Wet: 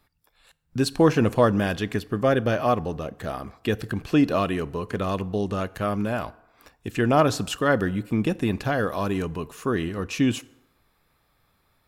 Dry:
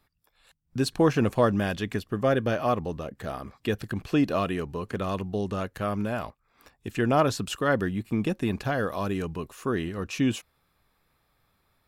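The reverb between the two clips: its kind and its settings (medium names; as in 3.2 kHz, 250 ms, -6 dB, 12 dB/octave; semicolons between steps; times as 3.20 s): FDN reverb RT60 0.99 s, low-frequency decay 0.7×, high-frequency decay 0.6×, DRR 17.5 dB; trim +3 dB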